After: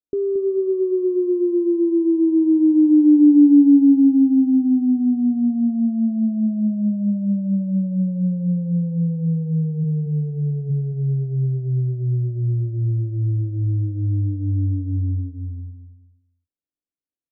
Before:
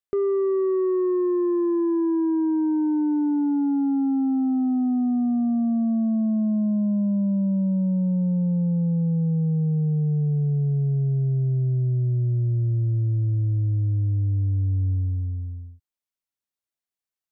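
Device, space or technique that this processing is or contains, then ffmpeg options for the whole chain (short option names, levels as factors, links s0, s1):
under water: -filter_complex "[0:a]asplit=3[s0][s1][s2];[s0]afade=t=out:st=9.83:d=0.02[s3];[s1]highpass=120,afade=t=in:st=9.83:d=0.02,afade=t=out:st=10.69:d=0.02[s4];[s2]afade=t=in:st=10.69:d=0.02[s5];[s3][s4][s5]amix=inputs=3:normalize=0,lowpass=f=540:w=0.5412,lowpass=f=540:w=1.3066,equalizer=f=290:t=o:w=0.29:g=11,asplit=2[s6][s7];[s7]adelay=225,lowpass=f=2000:p=1,volume=0.398,asplit=2[s8][s9];[s9]adelay=225,lowpass=f=2000:p=1,volume=0.27,asplit=2[s10][s11];[s11]adelay=225,lowpass=f=2000:p=1,volume=0.27[s12];[s6][s8][s10][s12]amix=inputs=4:normalize=0"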